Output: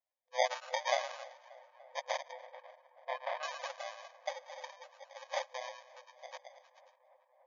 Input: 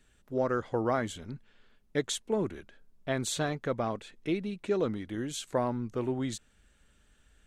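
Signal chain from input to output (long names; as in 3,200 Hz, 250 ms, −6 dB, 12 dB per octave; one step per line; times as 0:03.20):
spectral dynamics exaggerated over time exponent 2
on a send: echo through a band-pass that steps 108 ms, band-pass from 1,200 Hz, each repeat 0.7 octaves, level −9 dB
on the sum: downward compressor 5 to 1, threshold −41 dBFS, peak gain reduction 13.5 dB
high-pass filter sweep 740 Hz → 1,500 Hz, 0:00.23–0:03.01
in parallel at −8 dB: slack as between gear wheels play −56 dBFS
on the sum: decimation without filtering 32×
0:02.32–0:03.43: high-frequency loss of the air 380 metres
tape delay 291 ms, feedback 87%, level −21 dB, low-pass 2,700 Hz
brick-wall band-pass 500–7,100 Hz
level +11 dB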